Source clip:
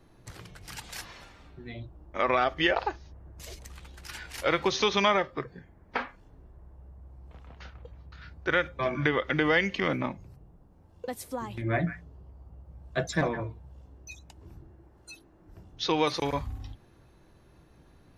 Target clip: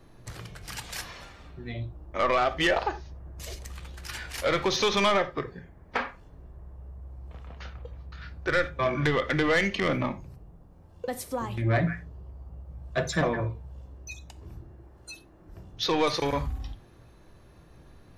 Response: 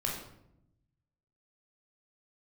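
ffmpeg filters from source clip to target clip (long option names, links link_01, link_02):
-filter_complex "[0:a]asoftclip=type=tanh:threshold=-21dB,asplit=2[link_01][link_02];[1:a]atrim=start_sample=2205,atrim=end_sample=4410[link_03];[link_02][link_03]afir=irnorm=-1:irlink=0,volume=-12.5dB[link_04];[link_01][link_04]amix=inputs=2:normalize=0,volume=2dB"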